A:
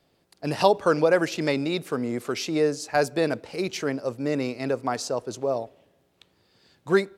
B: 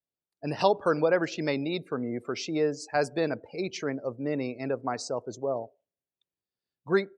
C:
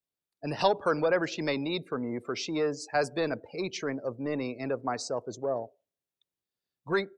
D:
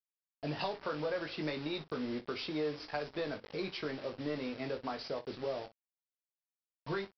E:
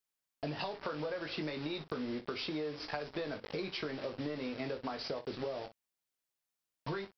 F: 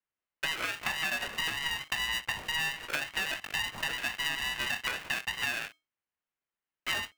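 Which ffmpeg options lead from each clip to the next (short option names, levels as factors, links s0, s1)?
-af "afftdn=nr=29:nf=-40,volume=0.631"
-filter_complex "[0:a]equalizer=f=3700:w=5.7:g=3,acrossover=split=580|1200[s0][s1][s2];[s0]asoftclip=type=tanh:threshold=0.0501[s3];[s3][s1][s2]amix=inputs=3:normalize=0"
-af "acompressor=threshold=0.0141:ratio=4,aresample=11025,acrusher=bits=7:mix=0:aa=0.000001,aresample=44100,aecho=1:1:20|59:0.531|0.158"
-af "acompressor=threshold=0.00794:ratio=6,volume=2.11"
-filter_complex "[0:a]asplit=2[s0][s1];[s1]aeval=exprs='sgn(val(0))*max(abs(val(0))-0.00178,0)':c=same,volume=0.596[s2];[s0][s2]amix=inputs=2:normalize=0,lowpass=f=2300:t=q:w=0.5098,lowpass=f=2300:t=q:w=0.6013,lowpass=f=2300:t=q:w=0.9,lowpass=f=2300:t=q:w=2.563,afreqshift=-2700,aeval=exprs='val(0)*sgn(sin(2*PI*480*n/s))':c=same,volume=1.26"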